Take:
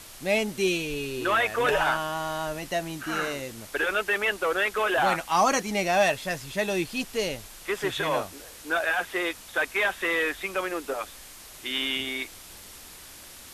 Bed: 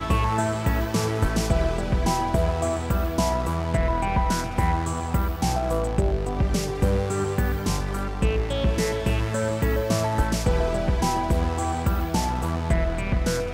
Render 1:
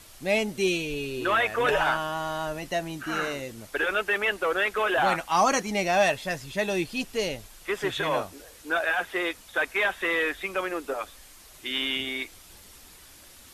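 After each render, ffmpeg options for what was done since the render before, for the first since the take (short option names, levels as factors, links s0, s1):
-af "afftdn=nr=6:nf=-46"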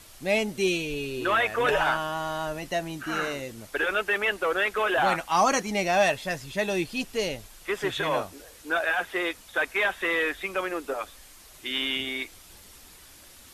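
-af anull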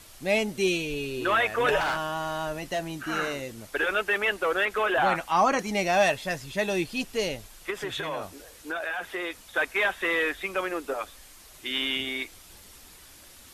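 -filter_complex "[0:a]asettb=1/sr,asplit=3[s0][s1][s2];[s0]atrim=end=1.804[s3];[s1]atrim=start=1.8:end=2.99,asetpts=PTS-STARTPTS,afade=t=in:d=0.004:c=qsin,afade=t=out:st=1.186:d=0.004:c=qsin,asoftclip=type=hard:threshold=0.0631[s4];[s2]atrim=start=2.986[s5];[s3][s4]acrossfade=d=0.004:c1=hsin:c2=qsin[s6];[s6][s5]acrossfade=d=0.004:c1=qsin:c2=hsin,asettb=1/sr,asplit=3[s7][s8][s9];[s7]atrim=end=4.654[s10];[s8]atrim=start=4.65:end=5.59,asetpts=PTS-STARTPTS,afade=t=in:d=0.004:c=qsin,afade=t=out:st=0.936:d=0.004:c=qsin,acrossover=split=3100[s11][s12];[s12]acompressor=threshold=0.00794:ratio=4:attack=1:release=60[s13];[s11][s13]amix=inputs=2:normalize=0[s14];[s9]atrim=start=5.586[s15];[s10][s14]acrossfade=d=0.004:c1=hsin:c2=qsin[s16];[s16][s15]acrossfade=d=0.004:c1=qsin:c2=hsin,asettb=1/sr,asplit=3[s17][s18][s19];[s17]atrim=end=7.704[s20];[s18]atrim=start=7.7:end=9.43,asetpts=PTS-STARTPTS,afade=t=in:d=0.004:c=qsin,afade=t=out:st=1.726:d=0.004:c=qsin,acompressor=threshold=0.0398:ratio=5:attack=3.2:release=140:knee=1:detection=peak[s21];[s19]atrim=start=9.426[s22];[s20][s21]acrossfade=d=0.004:c1=hsin:c2=qsin[s23];[s23][s22]acrossfade=d=0.004:c1=qsin:c2=hsin"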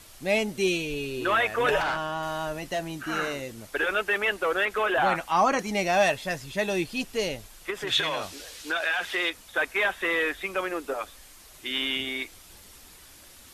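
-filter_complex "[0:a]asettb=1/sr,asplit=3[s0][s1][s2];[s0]atrim=end=1.824[s3];[s1]atrim=start=1.82:end=2.23,asetpts=PTS-STARTPTS,afade=t=in:d=0.004:c=qsin,afade=t=out:st=0.406:d=0.004:c=qsin,highshelf=f=8300:g=-10.5[s4];[s2]atrim=start=2.226[s5];[s3][s4]acrossfade=d=0.004:c1=hsin:c2=qsin[s6];[s6][s5]acrossfade=d=0.004:c1=qsin:c2=hsin,asettb=1/sr,asplit=3[s7][s8][s9];[s7]atrim=end=7.874[s10];[s8]atrim=start=7.87:end=9.3,asetpts=PTS-STARTPTS,afade=t=in:d=0.004:c=qsin,afade=t=out:st=1.426:d=0.004:c=qsin,equalizer=f=4000:w=0.52:g=11.5[s11];[s9]atrim=start=9.296[s12];[s10][s11]acrossfade=d=0.004:c1=hsin:c2=qsin[s13];[s13][s12]acrossfade=d=0.004:c1=qsin:c2=hsin"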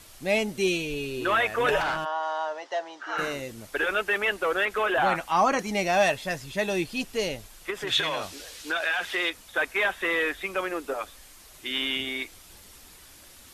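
-filter_complex "[0:a]asplit=3[s0][s1][s2];[s0]afade=t=out:st=2.04:d=0.02[s3];[s1]highpass=f=450:w=0.5412,highpass=f=450:w=1.3066,equalizer=f=890:t=q:w=4:g=7,equalizer=f=2500:t=q:w=4:g=-9,equalizer=f=4200:t=q:w=4:g=-5,lowpass=f=5400:w=0.5412,lowpass=f=5400:w=1.3066,afade=t=in:st=2.04:d=0.02,afade=t=out:st=3.17:d=0.02[s4];[s2]afade=t=in:st=3.17:d=0.02[s5];[s3][s4][s5]amix=inputs=3:normalize=0"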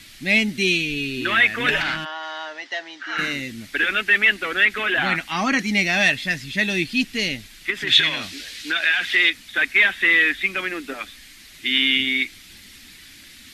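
-af "equalizer=f=125:t=o:w=1:g=3,equalizer=f=250:t=o:w=1:g=11,equalizer=f=500:t=o:w=1:g=-8,equalizer=f=1000:t=o:w=1:g=-7,equalizer=f=2000:t=o:w=1:g=12,equalizer=f=4000:t=o:w=1:g=8"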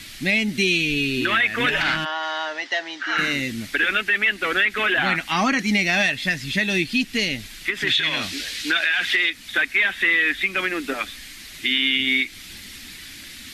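-filter_complex "[0:a]asplit=2[s0][s1];[s1]acompressor=threshold=0.0447:ratio=6,volume=0.891[s2];[s0][s2]amix=inputs=2:normalize=0,alimiter=limit=0.316:level=0:latency=1:release=172"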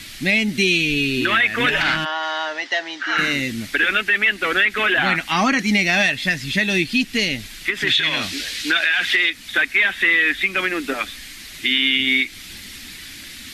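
-af "volume=1.33"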